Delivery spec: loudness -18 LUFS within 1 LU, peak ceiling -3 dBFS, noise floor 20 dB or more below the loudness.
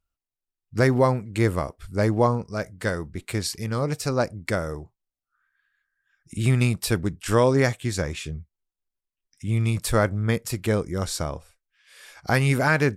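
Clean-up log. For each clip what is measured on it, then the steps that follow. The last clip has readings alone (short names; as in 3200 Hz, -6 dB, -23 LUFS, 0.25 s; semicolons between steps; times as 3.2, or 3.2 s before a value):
loudness -24.5 LUFS; peak -8.5 dBFS; loudness target -18.0 LUFS
-> gain +6.5 dB; limiter -3 dBFS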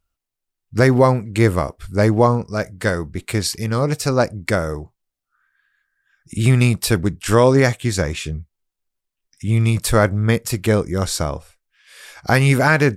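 loudness -18.0 LUFS; peak -3.0 dBFS; noise floor -83 dBFS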